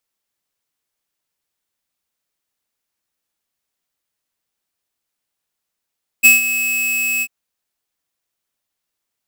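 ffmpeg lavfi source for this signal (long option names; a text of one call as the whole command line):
ffmpeg -f lavfi -i "aevalsrc='0.473*(2*lt(mod(2580*t,1),0.5)-1)':duration=1.043:sample_rate=44100,afade=type=in:duration=0.024,afade=type=out:start_time=0.024:duration=0.151:silence=0.237,afade=type=out:start_time=0.99:duration=0.053" out.wav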